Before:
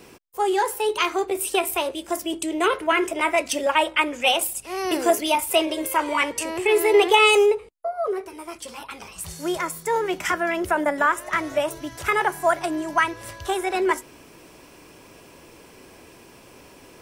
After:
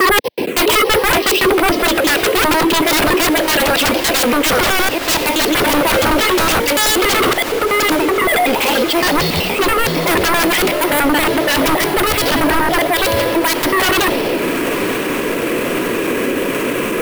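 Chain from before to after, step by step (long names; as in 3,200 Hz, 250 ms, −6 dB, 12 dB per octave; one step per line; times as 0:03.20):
slices reordered back to front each 94 ms, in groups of 6
high-pass filter 97 Hz
high-shelf EQ 2,100 Hz +11.5 dB
time-frequency box erased 0:12.61–0:12.86, 780–2,800 Hz
octave-band graphic EQ 250/500/1,000 Hz +7/+11/+7 dB
bad sample-rate conversion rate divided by 4×, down filtered, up hold
reversed playback
downward compressor 12 to 1, threshold −18 dBFS, peak gain reduction 18 dB
reversed playback
phaser swept by the level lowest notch 530 Hz, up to 1,300 Hz, full sweep at −28 dBFS
sine wavefolder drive 19 dB, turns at −9 dBFS
feedback delay with all-pass diffusion 1,048 ms, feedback 75%, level −14.5 dB
boost into a limiter +11.5 dB
multiband upward and downward expander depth 40%
level −7 dB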